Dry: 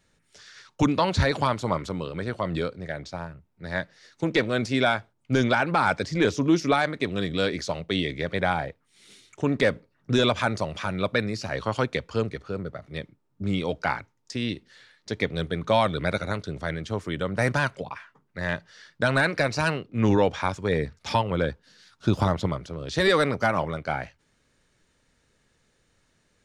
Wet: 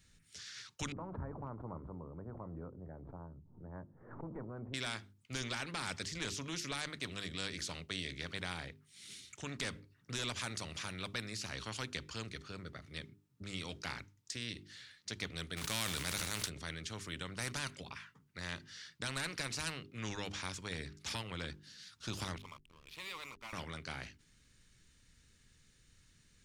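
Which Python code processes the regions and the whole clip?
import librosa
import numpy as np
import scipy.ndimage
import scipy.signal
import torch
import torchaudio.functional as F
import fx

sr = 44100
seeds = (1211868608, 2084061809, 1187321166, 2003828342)

y = fx.chain(x, sr, fx.steep_lowpass(hz=960.0, slope=36),
    fx.pre_swell(db_per_s=130.0), at=(0.92, 4.74))
y = fx.envelope_flatten(y, sr, power=0.6, at=(15.56, 16.48), fade=0.02)
y = fx.sustainer(y, sr, db_per_s=32.0, at=(15.56, 16.48), fade=0.02)
y = fx.chain(y, sr, fx.double_bandpass(hz=1600.0, octaves=1.2),
    fx.backlash(play_db=-46.5), at=(22.38, 23.53))
y = fx.tone_stack(y, sr, knobs='6-0-2')
y = fx.hum_notches(y, sr, base_hz=50, count=8)
y = fx.spectral_comp(y, sr, ratio=2.0)
y = y * librosa.db_to_amplitude(7.5)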